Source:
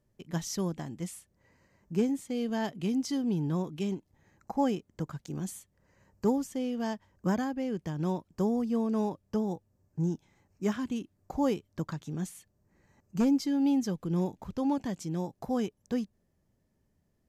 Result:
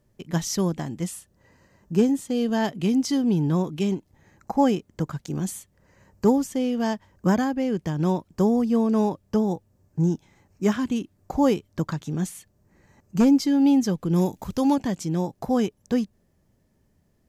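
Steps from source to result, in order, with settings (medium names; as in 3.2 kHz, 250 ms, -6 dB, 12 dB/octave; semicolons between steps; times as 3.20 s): 1.06–2.58 s: band-stop 2.2 kHz, Q 7.5; 14.13–14.74 s: treble shelf 6.8 kHz -> 3.6 kHz +12 dB; trim +8 dB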